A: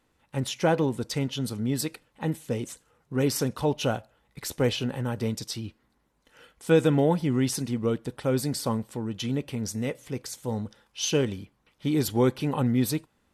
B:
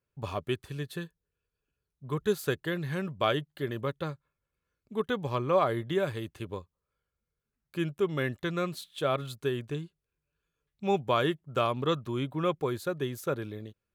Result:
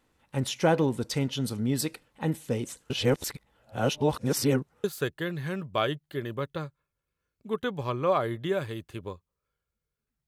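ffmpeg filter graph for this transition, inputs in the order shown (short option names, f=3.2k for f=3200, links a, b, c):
-filter_complex "[0:a]apad=whole_dur=10.27,atrim=end=10.27,asplit=2[a][b];[a]atrim=end=2.902[c];[b]atrim=start=2.898:end=4.842,asetpts=PTS-STARTPTS,areverse[d];[1:a]atrim=start=2.298:end=7.73[e];[c][d]acrossfade=d=0.004:c1=hsin:c2=hsin[f];[f][e]acrossfade=d=0.004:c1=hsin:c2=hsin"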